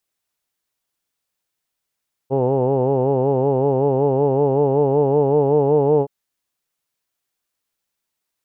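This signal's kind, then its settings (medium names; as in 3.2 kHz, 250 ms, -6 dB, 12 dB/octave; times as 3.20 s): formant vowel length 3.77 s, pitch 130 Hz, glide +2 st, F1 460 Hz, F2 860 Hz, F3 2.8 kHz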